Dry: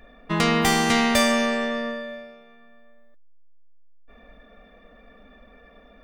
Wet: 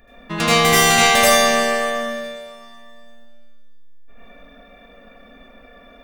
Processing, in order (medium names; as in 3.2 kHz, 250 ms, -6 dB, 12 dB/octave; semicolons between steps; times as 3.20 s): treble shelf 6 kHz +7.5 dB; reverberation, pre-delay 76 ms, DRR -8.5 dB; trim -2.5 dB